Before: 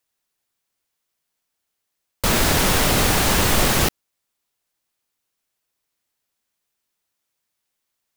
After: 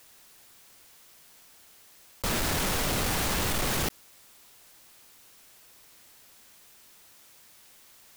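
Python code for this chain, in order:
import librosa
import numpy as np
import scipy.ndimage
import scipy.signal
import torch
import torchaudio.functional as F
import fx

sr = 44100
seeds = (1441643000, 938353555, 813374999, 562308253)

y = 10.0 ** (-19.5 / 20.0) * np.tanh(x / 10.0 ** (-19.5 / 20.0))
y = fx.env_flatten(y, sr, amount_pct=50)
y = y * librosa.db_to_amplitude(-5.5)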